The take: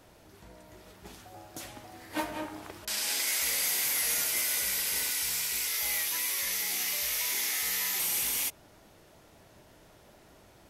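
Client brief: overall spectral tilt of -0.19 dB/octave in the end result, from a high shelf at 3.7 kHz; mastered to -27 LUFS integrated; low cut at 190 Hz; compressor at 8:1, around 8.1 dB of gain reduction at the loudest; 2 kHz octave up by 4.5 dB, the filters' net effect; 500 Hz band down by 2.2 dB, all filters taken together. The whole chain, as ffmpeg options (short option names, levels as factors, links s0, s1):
-af "highpass=190,equalizer=f=500:t=o:g=-3,equalizer=f=2000:t=o:g=7,highshelf=f=3700:g=-7,acompressor=threshold=0.0158:ratio=8,volume=3.35"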